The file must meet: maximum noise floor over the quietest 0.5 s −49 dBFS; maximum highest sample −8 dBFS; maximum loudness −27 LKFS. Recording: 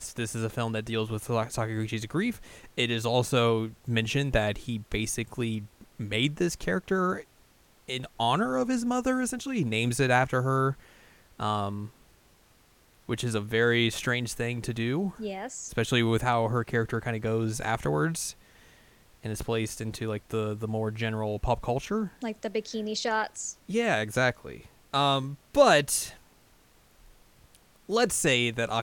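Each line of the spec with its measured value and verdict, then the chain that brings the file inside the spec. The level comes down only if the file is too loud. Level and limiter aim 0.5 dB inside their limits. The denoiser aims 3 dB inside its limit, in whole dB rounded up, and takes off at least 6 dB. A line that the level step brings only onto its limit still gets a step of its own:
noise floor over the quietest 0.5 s −61 dBFS: in spec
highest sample −7.5 dBFS: out of spec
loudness −28.5 LKFS: in spec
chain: brickwall limiter −8.5 dBFS

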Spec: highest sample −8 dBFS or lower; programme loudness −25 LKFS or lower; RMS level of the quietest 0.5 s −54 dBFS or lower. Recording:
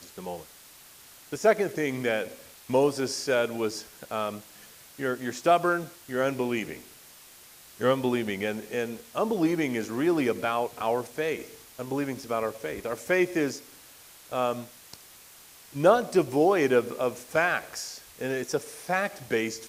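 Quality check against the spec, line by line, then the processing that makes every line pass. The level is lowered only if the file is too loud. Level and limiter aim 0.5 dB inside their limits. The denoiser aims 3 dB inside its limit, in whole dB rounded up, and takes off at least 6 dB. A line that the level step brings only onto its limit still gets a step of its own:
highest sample −7.0 dBFS: out of spec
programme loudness −27.5 LKFS: in spec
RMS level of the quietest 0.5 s −51 dBFS: out of spec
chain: broadband denoise 6 dB, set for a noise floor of −51 dBFS
brickwall limiter −8.5 dBFS

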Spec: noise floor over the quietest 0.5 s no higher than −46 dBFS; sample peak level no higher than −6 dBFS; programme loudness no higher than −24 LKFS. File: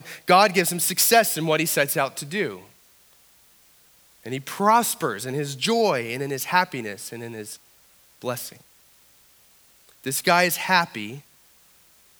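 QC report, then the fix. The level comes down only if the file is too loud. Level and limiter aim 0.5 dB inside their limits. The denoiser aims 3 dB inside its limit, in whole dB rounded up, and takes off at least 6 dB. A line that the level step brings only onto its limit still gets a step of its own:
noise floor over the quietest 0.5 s −56 dBFS: in spec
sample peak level −2.5 dBFS: out of spec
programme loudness −21.5 LKFS: out of spec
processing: level −3 dB
brickwall limiter −6.5 dBFS

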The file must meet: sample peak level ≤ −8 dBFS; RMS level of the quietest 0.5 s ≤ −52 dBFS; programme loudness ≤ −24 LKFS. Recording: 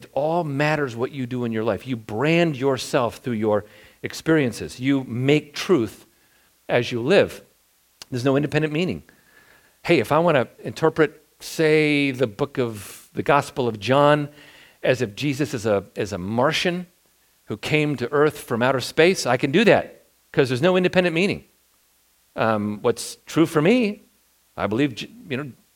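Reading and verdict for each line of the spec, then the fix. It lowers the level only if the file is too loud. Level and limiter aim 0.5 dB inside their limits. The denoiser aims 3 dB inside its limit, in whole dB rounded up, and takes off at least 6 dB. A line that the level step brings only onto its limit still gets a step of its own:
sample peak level −2.0 dBFS: out of spec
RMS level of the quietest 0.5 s −62 dBFS: in spec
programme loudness −21.5 LKFS: out of spec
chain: level −3 dB
brickwall limiter −8.5 dBFS

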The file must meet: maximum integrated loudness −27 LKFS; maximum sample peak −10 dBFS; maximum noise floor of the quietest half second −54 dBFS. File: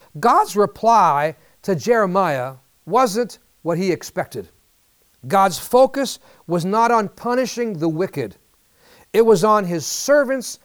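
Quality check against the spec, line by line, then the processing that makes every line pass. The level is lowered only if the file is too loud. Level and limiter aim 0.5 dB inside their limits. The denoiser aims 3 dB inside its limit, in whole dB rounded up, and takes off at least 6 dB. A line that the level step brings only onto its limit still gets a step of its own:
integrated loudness −18.5 LKFS: out of spec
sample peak −4.5 dBFS: out of spec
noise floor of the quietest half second −59 dBFS: in spec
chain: level −9 dB

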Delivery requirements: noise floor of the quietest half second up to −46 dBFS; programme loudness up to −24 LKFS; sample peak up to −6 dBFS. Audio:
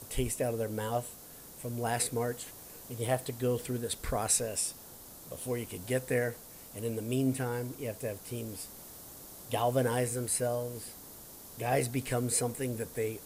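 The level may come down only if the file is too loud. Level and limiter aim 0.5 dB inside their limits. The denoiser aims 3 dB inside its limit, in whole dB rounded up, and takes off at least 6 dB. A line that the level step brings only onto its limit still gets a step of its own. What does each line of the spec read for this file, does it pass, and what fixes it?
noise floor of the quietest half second −50 dBFS: in spec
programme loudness −33.0 LKFS: in spec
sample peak −16.5 dBFS: in spec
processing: no processing needed

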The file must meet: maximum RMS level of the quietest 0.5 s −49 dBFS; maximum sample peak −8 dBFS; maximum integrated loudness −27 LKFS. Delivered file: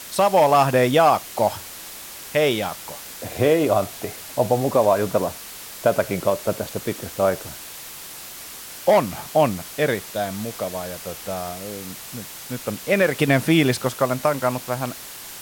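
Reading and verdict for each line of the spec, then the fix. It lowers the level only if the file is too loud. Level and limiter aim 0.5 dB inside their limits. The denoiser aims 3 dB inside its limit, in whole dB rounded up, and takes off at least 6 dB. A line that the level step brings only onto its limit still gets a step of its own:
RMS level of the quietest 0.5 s −38 dBFS: out of spec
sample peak −6.0 dBFS: out of spec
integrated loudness −21.5 LKFS: out of spec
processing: broadband denoise 8 dB, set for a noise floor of −38 dBFS
level −6 dB

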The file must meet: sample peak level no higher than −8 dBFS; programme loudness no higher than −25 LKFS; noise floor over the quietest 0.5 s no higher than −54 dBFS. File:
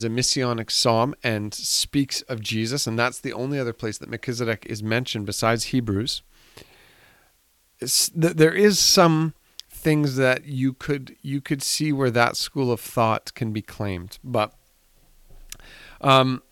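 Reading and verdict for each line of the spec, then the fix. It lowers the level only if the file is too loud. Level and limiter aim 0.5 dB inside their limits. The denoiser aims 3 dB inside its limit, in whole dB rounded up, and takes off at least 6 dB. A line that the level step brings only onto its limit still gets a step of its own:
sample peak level −4.0 dBFS: out of spec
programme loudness −22.0 LKFS: out of spec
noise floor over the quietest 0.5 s −63 dBFS: in spec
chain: level −3.5 dB
brickwall limiter −8.5 dBFS

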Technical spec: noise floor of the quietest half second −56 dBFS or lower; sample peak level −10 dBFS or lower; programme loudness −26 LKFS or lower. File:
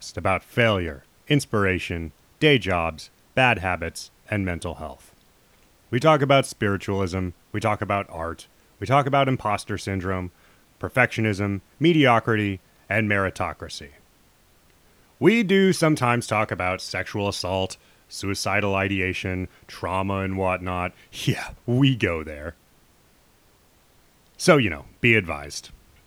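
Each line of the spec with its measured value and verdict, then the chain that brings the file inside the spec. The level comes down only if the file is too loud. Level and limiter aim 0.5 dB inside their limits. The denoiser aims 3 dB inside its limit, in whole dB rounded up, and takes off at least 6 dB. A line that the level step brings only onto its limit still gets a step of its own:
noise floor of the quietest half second −58 dBFS: in spec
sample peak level −3.0 dBFS: out of spec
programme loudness −23.0 LKFS: out of spec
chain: level −3.5 dB
brickwall limiter −10.5 dBFS

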